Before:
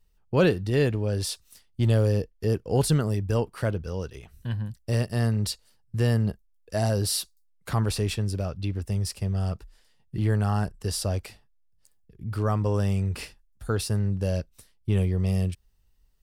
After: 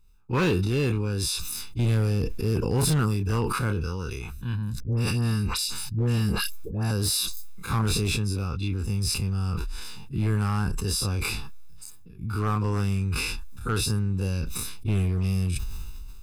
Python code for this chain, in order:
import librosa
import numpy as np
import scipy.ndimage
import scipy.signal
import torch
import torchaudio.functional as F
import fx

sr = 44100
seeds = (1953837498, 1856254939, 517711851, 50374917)

y = fx.spec_dilate(x, sr, span_ms=60)
y = fx.peak_eq(y, sr, hz=120.0, db=-2.5, octaves=1.8)
y = y + 0.94 * np.pad(y, (int(0.8 * sr / 1000.0), 0))[:len(y)]
y = fx.dispersion(y, sr, late='highs', ms=129.0, hz=1100.0, at=(4.8, 6.91))
y = np.clip(y, -10.0 ** (-14.5 / 20.0), 10.0 ** (-14.5 / 20.0))
y = fx.sustainer(y, sr, db_per_s=21.0)
y = y * 10.0 ** (-4.5 / 20.0)